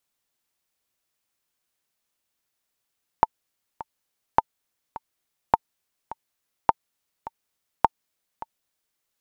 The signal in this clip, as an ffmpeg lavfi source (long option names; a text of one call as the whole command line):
ffmpeg -f lavfi -i "aevalsrc='pow(10,(-2-18*gte(mod(t,2*60/104),60/104))/20)*sin(2*PI*899*mod(t,60/104))*exp(-6.91*mod(t,60/104)/0.03)':duration=5.76:sample_rate=44100" out.wav